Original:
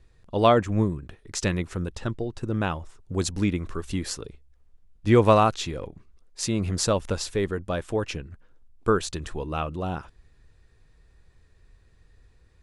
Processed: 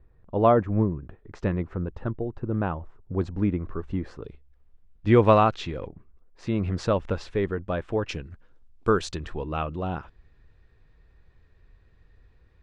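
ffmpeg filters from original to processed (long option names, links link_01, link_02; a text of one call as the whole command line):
ffmpeg -i in.wav -af "asetnsamples=nb_out_samples=441:pad=0,asendcmd='4.24 lowpass f 3200;5.87 lowpass f 1500;6.47 lowpass f 2500;8.09 lowpass f 5800;9.16 lowpass f 3200',lowpass=1300" out.wav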